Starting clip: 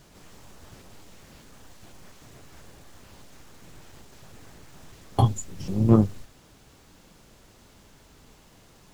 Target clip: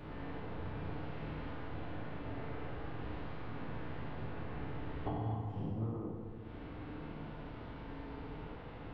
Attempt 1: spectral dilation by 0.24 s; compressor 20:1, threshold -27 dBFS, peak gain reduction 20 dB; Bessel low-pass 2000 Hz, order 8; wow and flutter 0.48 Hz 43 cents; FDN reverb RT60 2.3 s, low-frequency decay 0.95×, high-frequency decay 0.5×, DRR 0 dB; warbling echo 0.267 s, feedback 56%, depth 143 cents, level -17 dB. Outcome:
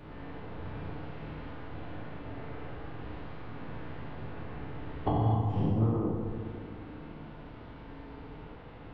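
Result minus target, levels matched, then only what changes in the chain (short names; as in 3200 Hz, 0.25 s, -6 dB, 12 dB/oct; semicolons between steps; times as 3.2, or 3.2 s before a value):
compressor: peak gain reduction -11 dB
change: compressor 20:1, threshold -38.5 dBFS, peak gain reduction 31 dB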